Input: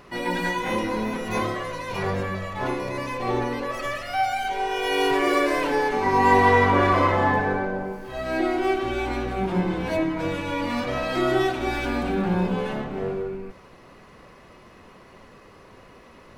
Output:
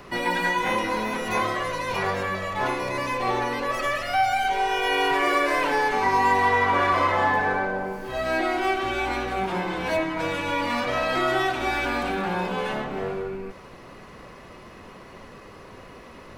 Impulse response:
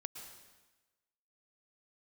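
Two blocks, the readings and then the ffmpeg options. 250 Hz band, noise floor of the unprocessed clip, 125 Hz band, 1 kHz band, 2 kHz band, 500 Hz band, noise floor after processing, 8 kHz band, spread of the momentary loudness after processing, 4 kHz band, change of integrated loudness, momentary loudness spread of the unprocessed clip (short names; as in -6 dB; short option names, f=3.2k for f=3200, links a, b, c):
-5.0 dB, -49 dBFS, -6.5 dB, +1.0 dB, +2.5 dB, -2.0 dB, -45 dBFS, +1.5 dB, 8 LU, +2.0 dB, 0.0 dB, 11 LU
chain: -filter_complex "[0:a]acrossover=split=250|610|2700[a][b][c][d];[a]acompressor=threshold=-42dB:ratio=4[e];[b]acompressor=threshold=-39dB:ratio=4[f];[c]acompressor=threshold=-24dB:ratio=4[g];[d]acompressor=threshold=-41dB:ratio=4[h];[e][f][g][h]amix=inputs=4:normalize=0,volume=4.5dB"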